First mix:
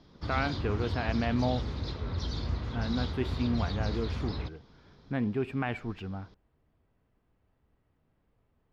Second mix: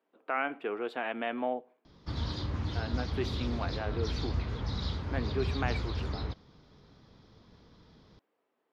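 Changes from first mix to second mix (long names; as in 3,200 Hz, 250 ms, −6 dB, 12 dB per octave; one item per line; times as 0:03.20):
speech: add high-pass filter 300 Hz 24 dB per octave
background: entry +1.85 s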